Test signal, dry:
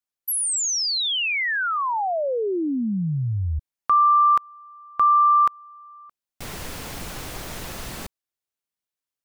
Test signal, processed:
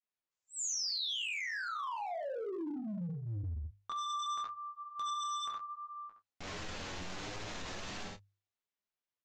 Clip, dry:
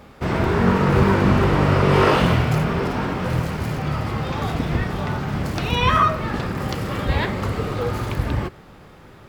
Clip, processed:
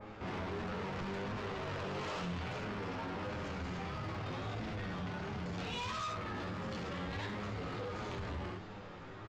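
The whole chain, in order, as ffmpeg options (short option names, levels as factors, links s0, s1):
-filter_complex "[0:a]flanger=delay=18.5:depth=4.4:speed=0.66,bass=f=250:g=-1,treble=f=4000:g=-8,asplit=2[s0][s1];[s1]adelay=28,volume=0.224[s2];[s0][s2]amix=inputs=2:normalize=0,aresample=16000,asoftclip=type=tanh:threshold=0.0668,aresample=44100,bandreject=f=50:t=h:w=6,bandreject=f=100:t=h:w=6,bandreject=f=150:t=h:w=6,flanger=delay=9.5:depth=1.5:regen=15:speed=1.5:shape=sinusoidal,asplit=2[s3][s4];[s4]aecho=0:1:12|68:0.141|0.473[s5];[s3][s5]amix=inputs=2:normalize=0,acompressor=threshold=0.01:ratio=5:attack=0.12:release=32:knee=6:detection=peak,adynamicequalizer=threshold=0.00126:dfrequency=3000:dqfactor=0.7:tfrequency=3000:tqfactor=0.7:attack=5:release=100:ratio=0.375:range=3:mode=boostabove:tftype=highshelf,volume=1.33"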